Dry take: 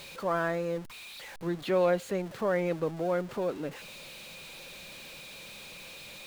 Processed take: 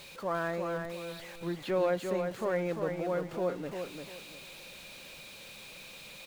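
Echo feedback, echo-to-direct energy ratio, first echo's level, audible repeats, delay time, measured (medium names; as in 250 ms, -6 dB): 27%, -5.0 dB, -5.5 dB, 3, 347 ms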